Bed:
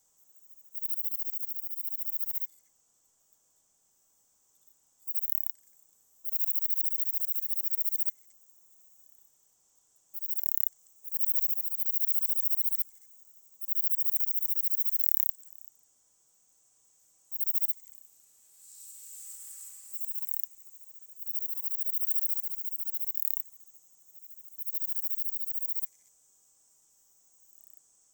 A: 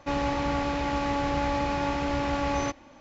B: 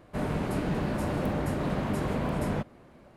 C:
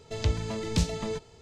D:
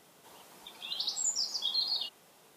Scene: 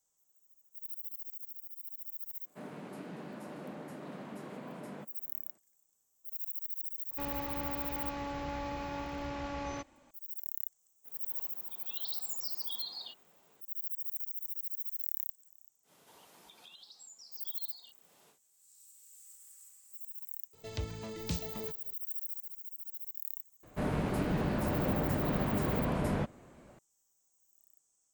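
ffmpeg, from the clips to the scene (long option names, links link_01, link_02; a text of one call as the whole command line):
ffmpeg -i bed.wav -i cue0.wav -i cue1.wav -i cue2.wav -i cue3.wav -filter_complex "[2:a]asplit=2[link_01][link_02];[4:a]asplit=2[link_03][link_04];[0:a]volume=-10.5dB[link_05];[link_01]highpass=frequency=170:width=0.5412,highpass=frequency=170:width=1.3066[link_06];[link_03]lowpass=frequency=2800:poles=1[link_07];[link_04]acompressor=threshold=-45dB:ratio=12:attack=2.7:release=248:knee=6:detection=rms[link_08];[3:a]lowshelf=frequency=61:gain=-7.5[link_09];[link_06]atrim=end=3.16,asetpts=PTS-STARTPTS,volume=-14dB,afade=type=in:duration=0.004:curve=hsin,afade=type=out:start_time=3.156:duration=0.004:curve=hsin,adelay=2420[link_10];[1:a]atrim=end=3,asetpts=PTS-STARTPTS,volume=-11.5dB,afade=type=in:duration=0.004:curve=hsin,afade=type=out:start_time=2.996:duration=0.004:curve=hsin,adelay=7110[link_11];[link_07]atrim=end=2.56,asetpts=PTS-STARTPTS,volume=-6dB,afade=type=in:duration=0.004:curve=hsin,afade=type=out:start_time=2.556:duration=0.004:curve=hsin,adelay=11050[link_12];[link_08]atrim=end=2.56,asetpts=PTS-STARTPTS,volume=-4dB,afade=type=in:duration=0.1,afade=type=out:start_time=2.46:duration=0.1,adelay=15830[link_13];[link_09]atrim=end=1.41,asetpts=PTS-STARTPTS,volume=-9dB,afade=type=in:duration=0.004:curve=hsin,afade=type=out:start_time=1.406:duration=0.004:curve=hsin,adelay=20530[link_14];[link_02]atrim=end=3.16,asetpts=PTS-STARTPTS,volume=-2.5dB,afade=type=in:duration=0.004:curve=hsin,afade=type=out:start_time=3.156:duration=0.004:curve=hsin,adelay=23630[link_15];[link_05][link_10][link_11][link_12][link_13][link_14][link_15]amix=inputs=7:normalize=0" out.wav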